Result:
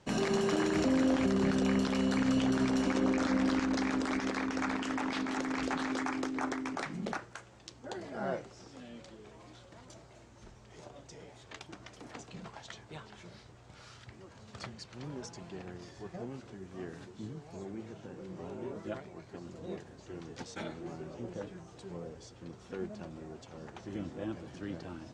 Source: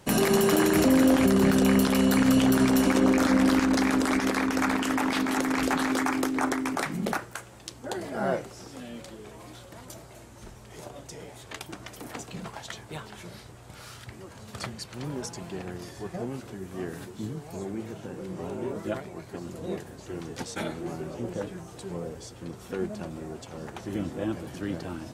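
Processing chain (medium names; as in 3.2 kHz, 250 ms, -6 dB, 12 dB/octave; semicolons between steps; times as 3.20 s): low-pass 7.1 kHz 24 dB/octave; trim -8 dB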